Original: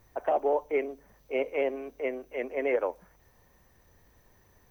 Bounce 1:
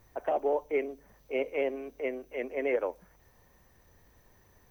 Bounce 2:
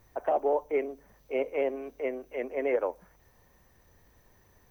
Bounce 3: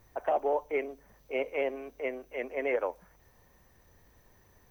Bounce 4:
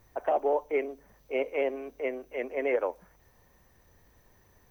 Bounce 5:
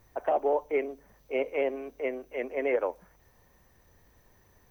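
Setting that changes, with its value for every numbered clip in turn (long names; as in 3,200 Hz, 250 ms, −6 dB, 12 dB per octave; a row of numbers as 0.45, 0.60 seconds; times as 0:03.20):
dynamic equaliser, frequency: 970, 2,900, 320, 100, 8,600 Hertz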